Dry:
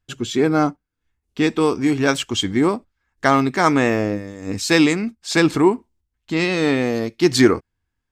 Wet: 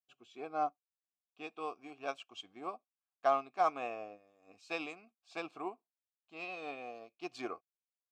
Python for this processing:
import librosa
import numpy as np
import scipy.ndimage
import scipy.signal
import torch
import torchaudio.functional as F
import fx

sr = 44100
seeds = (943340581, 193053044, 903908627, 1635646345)

y = fx.vowel_filter(x, sr, vowel='a')
y = fx.high_shelf(y, sr, hz=3100.0, db=8.5)
y = fx.upward_expand(y, sr, threshold_db=-45.0, expansion=1.5)
y = y * librosa.db_to_amplitude(-5.0)